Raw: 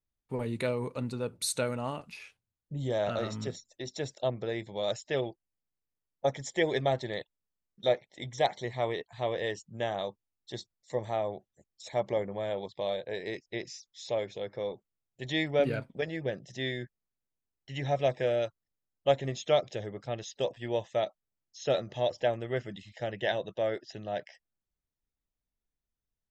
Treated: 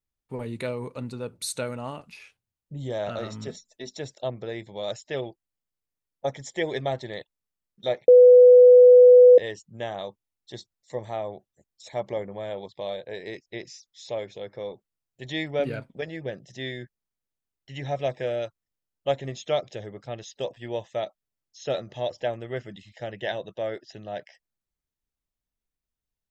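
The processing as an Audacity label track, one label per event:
3.480000	3.970000	comb filter 4.6 ms, depth 64%
8.080000	9.380000	beep over 496 Hz −8 dBFS

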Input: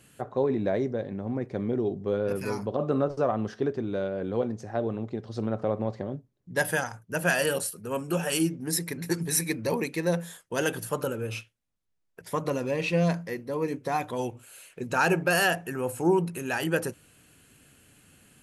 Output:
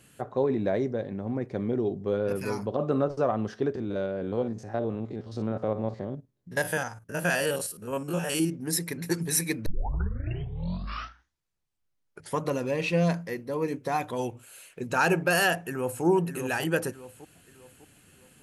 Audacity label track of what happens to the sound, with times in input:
3.750000	8.520000	spectrum averaged block by block every 50 ms
9.660000	9.660000	tape start 2.77 s
15.550000	16.040000	delay throw 600 ms, feedback 40%, level −7.5 dB

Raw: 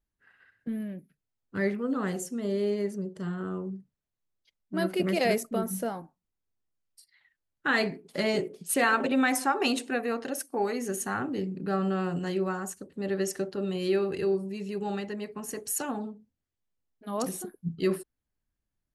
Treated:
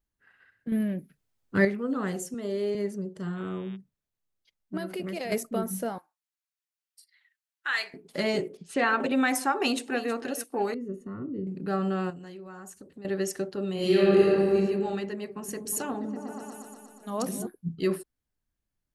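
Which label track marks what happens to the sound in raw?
0.720000	1.650000	clip gain +7.5 dB
2.340000	2.750000	high-pass filter 240 Hz
3.350000	3.750000	hum with harmonics 120 Hz, harmonics 31, −55 dBFS 0 dB per octave
4.770000	5.320000	downward compressor, threshold −30 dBFS
5.980000	7.940000	high-pass filter 1,400 Hz
8.570000	9.000000	high-frequency loss of the air 120 metres
9.560000	10.110000	delay throw 320 ms, feedback 40%, level −13.5 dB
10.740000	11.470000	moving average over 55 samples
12.100000	13.050000	downward compressor, threshold −41 dBFS
13.740000	14.560000	thrown reverb, RT60 1.8 s, DRR −7 dB
15.300000	17.470000	echo whose low-pass opens from repeat to repeat 120 ms, low-pass from 200 Hz, each repeat up 1 octave, level 0 dB

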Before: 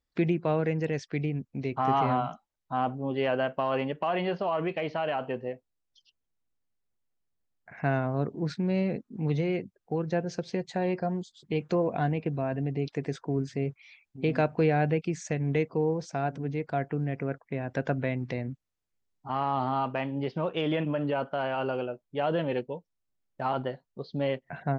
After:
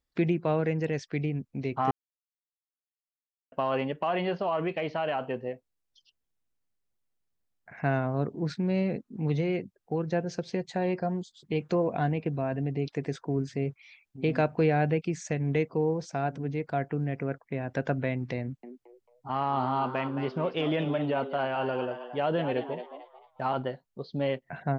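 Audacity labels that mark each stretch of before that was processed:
1.910000	3.520000	silence
18.410000	23.480000	echo with shifted repeats 221 ms, feedback 33%, per repeat +120 Hz, level −10 dB

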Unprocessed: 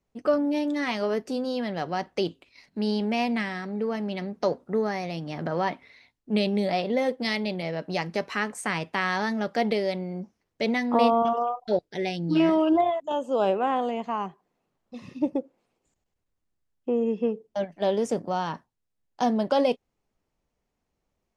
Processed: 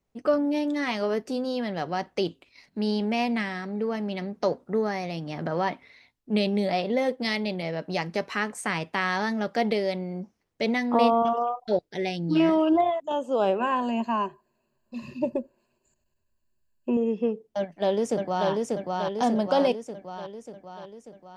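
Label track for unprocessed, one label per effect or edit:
13.590000	16.970000	EQ curve with evenly spaced ripples crests per octave 1.4, crest to trough 15 dB
17.580000	18.490000	delay throw 590 ms, feedback 60%, level −2 dB

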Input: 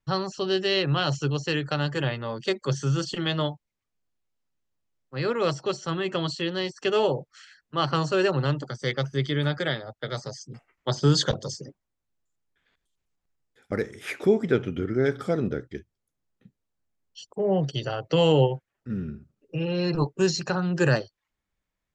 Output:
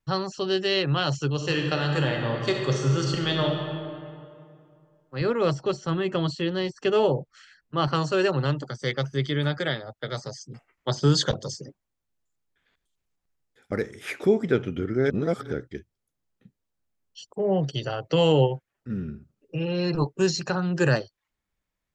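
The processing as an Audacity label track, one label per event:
1.320000	3.480000	thrown reverb, RT60 2.4 s, DRR 1 dB
5.210000	7.880000	spectral tilt −1.5 dB per octave
15.100000	15.520000	reverse

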